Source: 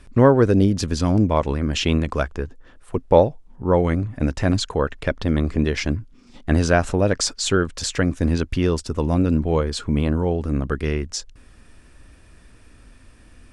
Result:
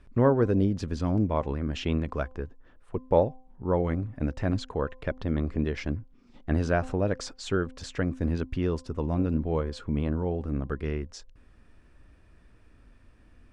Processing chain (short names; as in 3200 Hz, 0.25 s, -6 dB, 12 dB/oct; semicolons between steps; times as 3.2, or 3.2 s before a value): LPF 2000 Hz 6 dB/oct; de-hum 258.1 Hz, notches 4; gain -7.5 dB